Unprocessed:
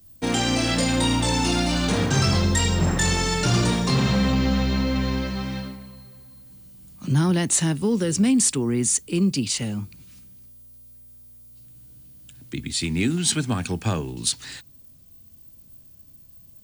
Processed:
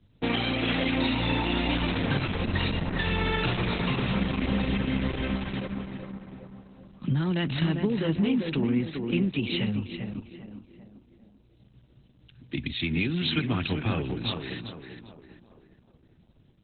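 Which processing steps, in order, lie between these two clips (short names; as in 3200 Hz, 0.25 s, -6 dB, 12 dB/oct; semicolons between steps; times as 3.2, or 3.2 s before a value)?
steep low-pass 4300 Hz 72 dB/oct; dynamic EQ 2500 Hz, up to +7 dB, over -45 dBFS, Q 1.7; compressor 16:1, threshold -22 dBFS, peak gain reduction 7.5 dB; tape echo 0.396 s, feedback 54%, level -4 dB, low-pass 1500 Hz; Opus 8 kbps 48000 Hz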